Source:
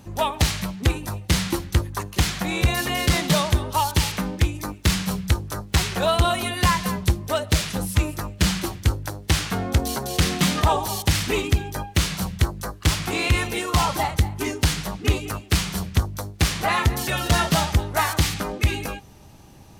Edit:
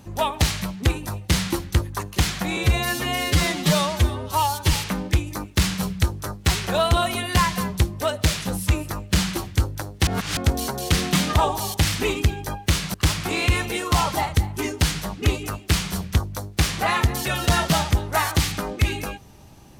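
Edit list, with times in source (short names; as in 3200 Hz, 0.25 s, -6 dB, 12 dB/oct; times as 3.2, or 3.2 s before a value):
2.57–4.01 stretch 1.5×
9.35–9.65 reverse
12.22–12.76 cut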